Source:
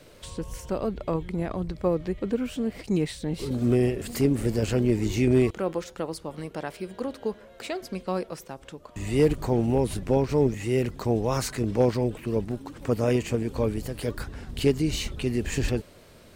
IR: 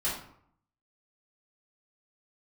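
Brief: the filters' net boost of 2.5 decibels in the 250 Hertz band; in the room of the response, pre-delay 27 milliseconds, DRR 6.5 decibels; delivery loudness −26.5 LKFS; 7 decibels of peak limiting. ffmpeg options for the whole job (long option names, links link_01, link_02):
-filter_complex "[0:a]equalizer=frequency=250:width_type=o:gain=3,alimiter=limit=-15dB:level=0:latency=1,asplit=2[link_01][link_02];[1:a]atrim=start_sample=2205,adelay=27[link_03];[link_02][link_03]afir=irnorm=-1:irlink=0,volume=-13.5dB[link_04];[link_01][link_04]amix=inputs=2:normalize=0,volume=0.5dB"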